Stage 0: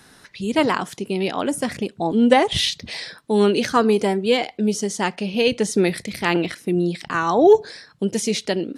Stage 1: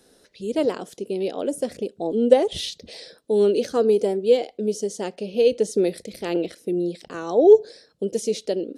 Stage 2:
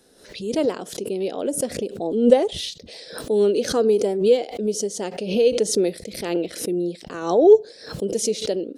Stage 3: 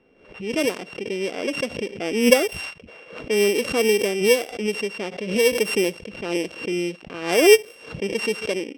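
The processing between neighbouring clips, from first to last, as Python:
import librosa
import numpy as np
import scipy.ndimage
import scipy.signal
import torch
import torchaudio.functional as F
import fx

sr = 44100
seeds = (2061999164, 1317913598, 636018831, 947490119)

y1 = fx.graphic_eq(x, sr, hz=(125, 500, 1000, 2000), db=(-9, 12, -10, -8))
y1 = F.gain(torch.from_numpy(y1), -6.5).numpy()
y2 = fx.pre_swell(y1, sr, db_per_s=95.0)
y3 = np.r_[np.sort(y2[:len(y2) // 16 * 16].reshape(-1, 16), axis=1).ravel(), y2[len(y2) // 16 * 16:]]
y3 = fx.env_lowpass(y3, sr, base_hz=2300.0, full_db=-15.5)
y3 = F.gain(torch.from_numpy(y3), -1.0).numpy()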